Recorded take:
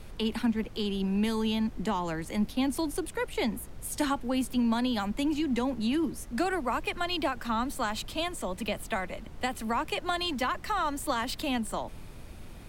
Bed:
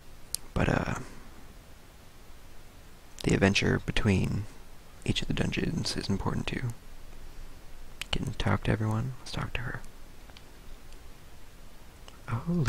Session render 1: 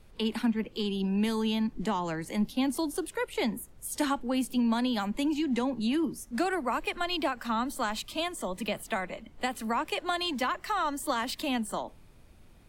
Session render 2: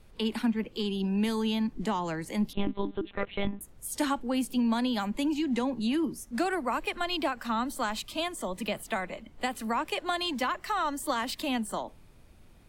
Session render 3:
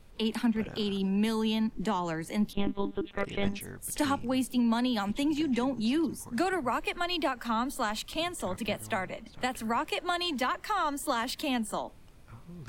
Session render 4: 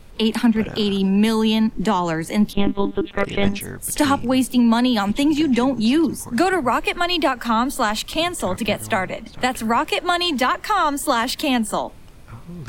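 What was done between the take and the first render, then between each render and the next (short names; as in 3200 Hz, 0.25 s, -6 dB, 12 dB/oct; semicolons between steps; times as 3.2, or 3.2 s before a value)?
noise print and reduce 11 dB
2.53–3.61 monotone LPC vocoder at 8 kHz 200 Hz
add bed -17.5 dB
gain +11 dB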